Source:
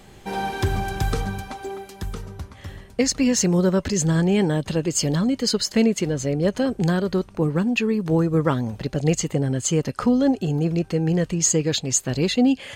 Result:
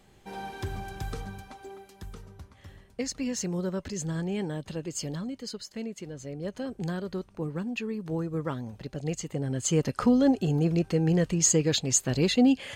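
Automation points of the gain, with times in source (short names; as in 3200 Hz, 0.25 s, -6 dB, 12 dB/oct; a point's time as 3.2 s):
5.05 s -12 dB
5.74 s -18.5 dB
6.84 s -11.5 dB
9.23 s -11.5 dB
9.8 s -3 dB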